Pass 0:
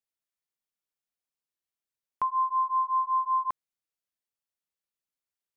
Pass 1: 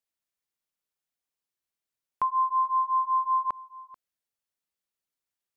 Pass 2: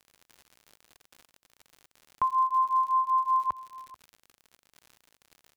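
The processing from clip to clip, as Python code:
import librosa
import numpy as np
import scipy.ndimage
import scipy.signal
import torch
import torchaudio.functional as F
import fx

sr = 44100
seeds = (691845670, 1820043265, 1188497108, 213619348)

y1 = x + 10.0 ** (-20.0 / 20.0) * np.pad(x, (int(437 * sr / 1000.0), 0))[:len(x)]
y1 = F.gain(torch.from_numpy(y1), 1.5).numpy()
y2 = fx.peak_eq(y1, sr, hz=69.0, db=10.0, octaves=1.7)
y2 = fx.dmg_crackle(y2, sr, seeds[0], per_s=87.0, level_db=-39.0)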